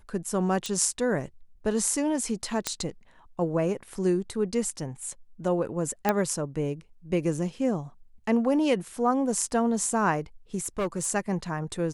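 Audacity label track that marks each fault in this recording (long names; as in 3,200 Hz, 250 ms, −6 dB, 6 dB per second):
0.660000	0.660000	click
2.670000	2.670000	click −9 dBFS
6.090000	6.090000	click −9 dBFS
10.660000	11.070000	clipping −23.5 dBFS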